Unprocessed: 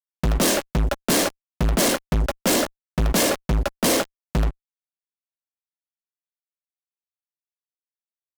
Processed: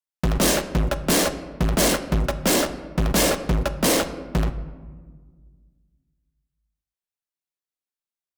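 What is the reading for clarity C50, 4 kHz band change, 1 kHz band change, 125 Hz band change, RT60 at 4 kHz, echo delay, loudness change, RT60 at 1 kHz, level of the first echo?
12.5 dB, +0.5 dB, +0.5 dB, +0.5 dB, 0.75 s, none, +0.5 dB, 1.4 s, none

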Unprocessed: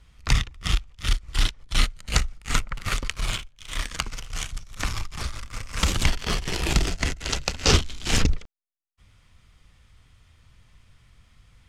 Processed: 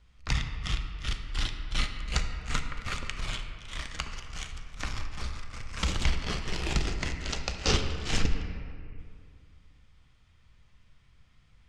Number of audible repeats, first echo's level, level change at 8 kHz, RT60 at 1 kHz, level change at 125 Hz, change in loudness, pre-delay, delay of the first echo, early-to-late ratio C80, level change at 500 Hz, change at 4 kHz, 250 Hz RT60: none, none, -9.5 dB, 2.1 s, -6.0 dB, -6.5 dB, 4 ms, none, 7.5 dB, -6.0 dB, -6.5 dB, 2.5 s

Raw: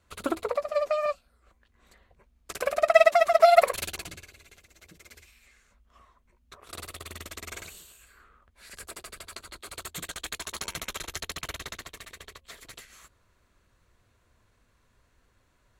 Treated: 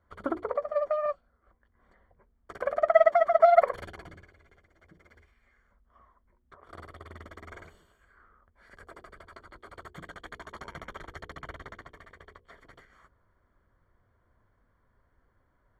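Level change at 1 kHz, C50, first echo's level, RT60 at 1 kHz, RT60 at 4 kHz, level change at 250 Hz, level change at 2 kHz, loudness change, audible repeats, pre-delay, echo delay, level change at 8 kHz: -1.5 dB, none, none, none, none, -2.0 dB, -6.5 dB, +1.0 dB, none, none, none, under -20 dB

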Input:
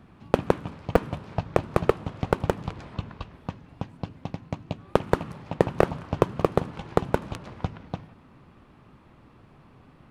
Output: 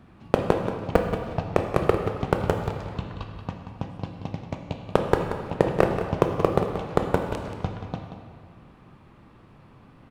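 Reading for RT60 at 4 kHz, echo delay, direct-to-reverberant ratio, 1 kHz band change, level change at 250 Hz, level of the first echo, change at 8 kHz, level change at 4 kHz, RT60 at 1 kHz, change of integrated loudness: 1.3 s, 0.181 s, 3.0 dB, +2.0 dB, +2.0 dB, -10.0 dB, n/a, +1.5 dB, 1.9 s, +1.5 dB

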